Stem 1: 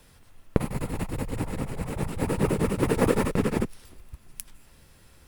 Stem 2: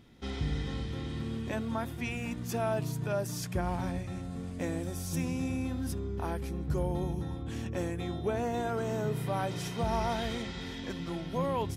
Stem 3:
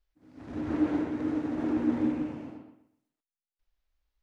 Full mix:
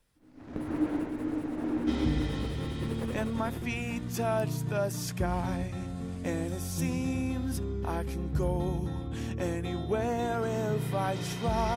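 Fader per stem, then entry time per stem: -17.5, +2.0, -2.5 dB; 0.00, 1.65, 0.00 s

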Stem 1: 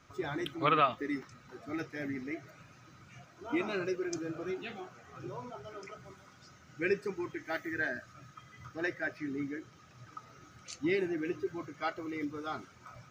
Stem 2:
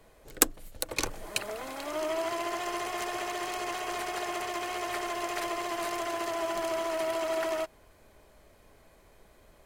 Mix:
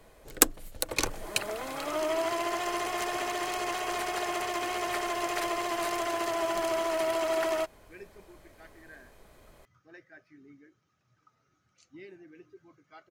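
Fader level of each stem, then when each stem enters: -17.5, +2.0 dB; 1.10, 0.00 s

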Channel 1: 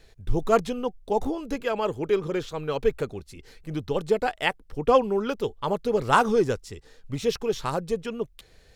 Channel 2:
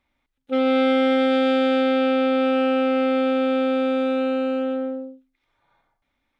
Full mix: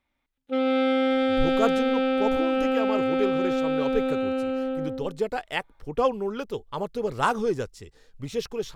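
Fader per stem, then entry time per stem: -4.0, -4.0 dB; 1.10, 0.00 s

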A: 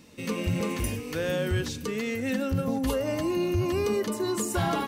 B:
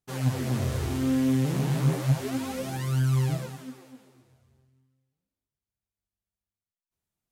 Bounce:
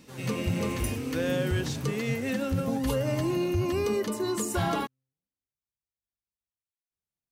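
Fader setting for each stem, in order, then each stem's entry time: -1.0, -9.5 dB; 0.00, 0.00 s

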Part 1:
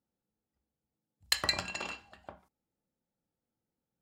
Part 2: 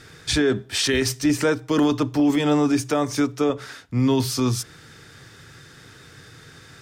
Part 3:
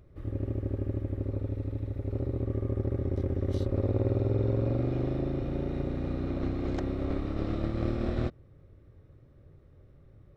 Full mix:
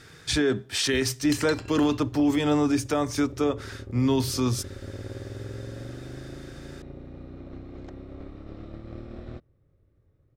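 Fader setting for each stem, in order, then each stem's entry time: -7.0, -3.5, -10.0 dB; 0.00, 0.00, 1.10 s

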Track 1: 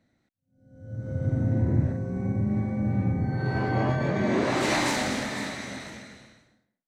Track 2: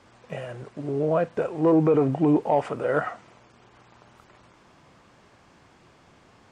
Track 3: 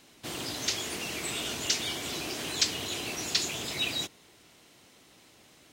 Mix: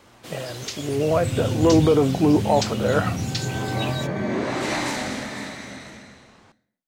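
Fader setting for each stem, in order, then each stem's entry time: -0.5, +2.5, -2.5 dB; 0.00, 0.00, 0.00 s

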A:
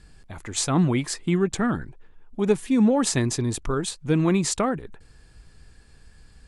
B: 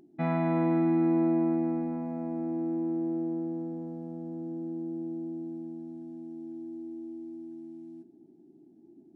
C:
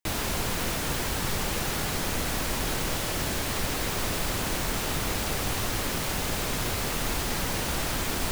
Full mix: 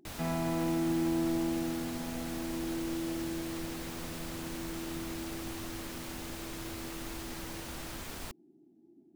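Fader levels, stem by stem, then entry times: off, -5.5 dB, -13.5 dB; off, 0.00 s, 0.00 s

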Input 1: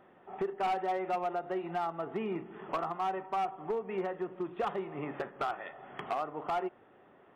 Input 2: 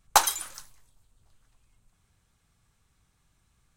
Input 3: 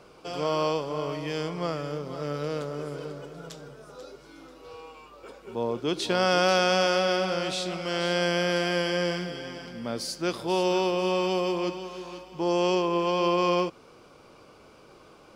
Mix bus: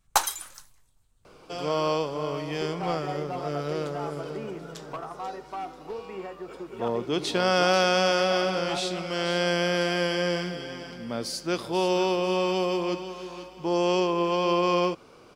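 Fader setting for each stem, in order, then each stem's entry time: -3.0, -3.0, +0.5 dB; 2.20, 0.00, 1.25 s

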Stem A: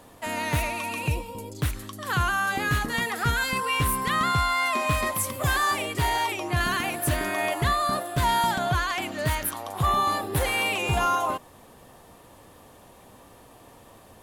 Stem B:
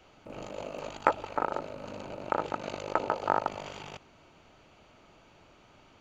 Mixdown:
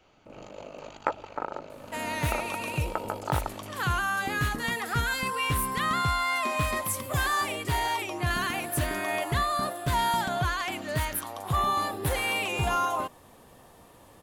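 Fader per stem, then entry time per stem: -3.0, -3.5 dB; 1.70, 0.00 s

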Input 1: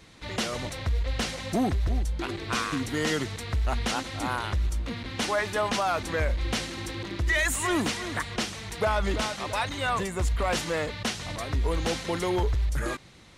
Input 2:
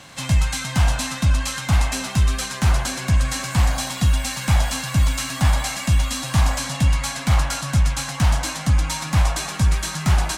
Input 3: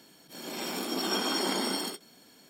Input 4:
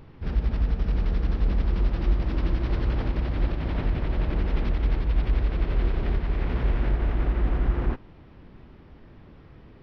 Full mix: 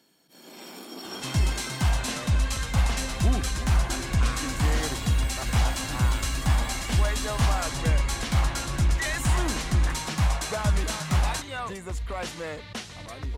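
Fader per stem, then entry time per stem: -6.0, -6.0, -8.0, -11.5 dB; 1.70, 1.05, 0.00, 2.05 s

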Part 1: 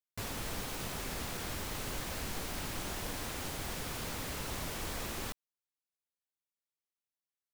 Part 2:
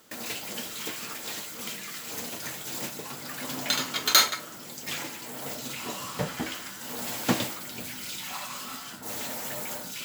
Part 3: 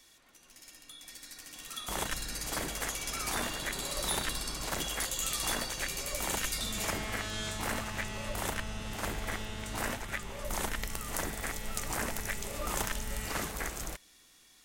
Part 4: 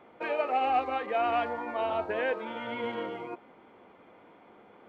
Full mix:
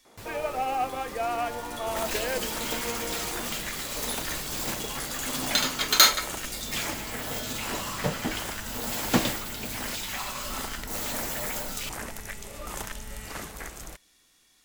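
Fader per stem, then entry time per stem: -4.5, +2.0, -2.5, -1.5 dB; 0.00, 1.85, 0.00, 0.05 s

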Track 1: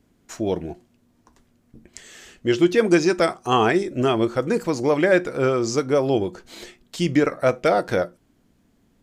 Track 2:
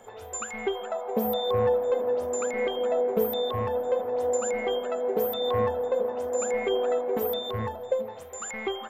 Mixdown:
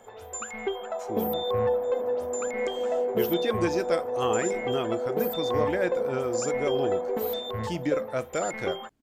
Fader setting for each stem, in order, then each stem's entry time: -10.5, -1.5 dB; 0.70, 0.00 s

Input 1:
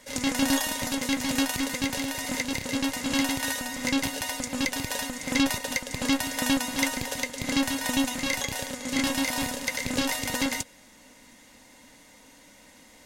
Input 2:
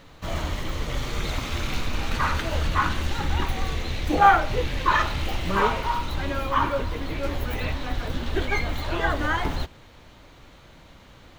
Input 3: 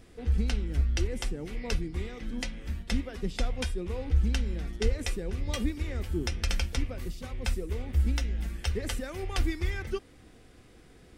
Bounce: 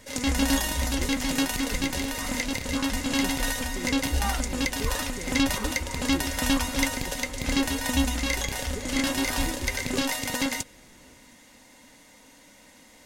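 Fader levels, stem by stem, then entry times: 0.0, -17.5, -3.5 dB; 0.00, 0.00, 0.00 s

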